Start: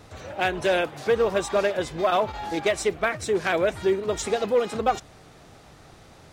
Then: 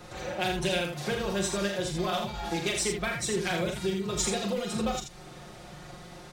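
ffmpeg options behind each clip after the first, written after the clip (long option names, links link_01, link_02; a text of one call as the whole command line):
ffmpeg -i in.wav -filter_complex "[0:a]aecho=1:1:5.6:0.84,acrossover=split=210|3000[link_01][link_02][link_03];[link_02]acompressor=threshold=-33dB:ratio=5[link_04];[link_01][link_04][link_03]amix=inputs=3:normalize=0,asplit=2[link_05][link_06];[link_06]aecho=0:1:40.82|81.63:0.501|0.501[link_07];[link_05][link_07]amix=inputs=2:normalize=0" out.wav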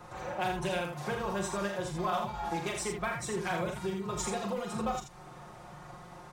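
ffmpeg -i in.wav -af "equalizer=frequency=125:width_type=o:width=1:gain=4,equalizer=frequency=1000:width_type=o:width=1:gain=11,equalizer=frequency=4000:width_type=o:width=1:gain=-5,volume=-6.5dB" out.wav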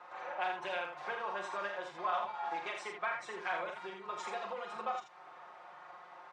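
ffmpeg -i in.wav -af "highpass=730,lowpass=2700" out.wav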